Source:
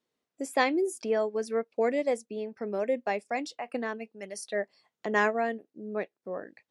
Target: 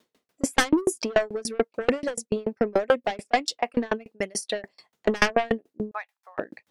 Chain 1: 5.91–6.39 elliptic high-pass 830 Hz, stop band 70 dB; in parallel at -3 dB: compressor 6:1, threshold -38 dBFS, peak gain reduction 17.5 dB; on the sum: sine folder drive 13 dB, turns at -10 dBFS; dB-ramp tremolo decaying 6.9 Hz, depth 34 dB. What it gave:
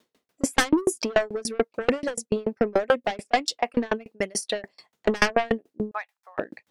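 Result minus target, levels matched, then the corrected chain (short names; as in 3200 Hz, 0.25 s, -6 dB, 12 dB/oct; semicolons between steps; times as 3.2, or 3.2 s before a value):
compressor: peak gain reduction -7.5 dB
5.91–6.39 elliptic high-pass 830 Hz, stop band 70 dB; in parallel at -3 dB: compressor 6:1, threshold -47 dBFS, peak gain reduction 25 dB; on the sum: sine folder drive 13 dB, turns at -10 dBFS; dB-ramp tremolo decaying 6.9 Hz, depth 34 dB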